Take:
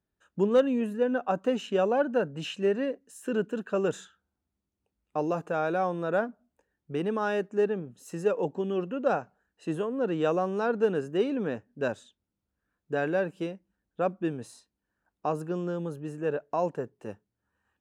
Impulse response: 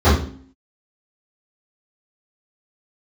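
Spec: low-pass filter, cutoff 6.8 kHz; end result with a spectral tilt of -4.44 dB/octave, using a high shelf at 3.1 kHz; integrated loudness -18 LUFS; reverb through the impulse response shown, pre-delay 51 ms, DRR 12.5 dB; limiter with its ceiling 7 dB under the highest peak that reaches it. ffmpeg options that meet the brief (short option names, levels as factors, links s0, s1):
-filter_complex "[0:a]lowpass=6800,highshelf=f=3100:g=-4,alimiter=limit=0.0891:level=0:latency=1,asplit=2[s0][s1];[1:a]atrim=start_sample=2205,adelay=51[s2];[s1][s2]afir=irnorm=-1:irlink=0,volume=0.0133[s3];[s0][s3]amix=inputs=2:normalize=0,volume=4.73"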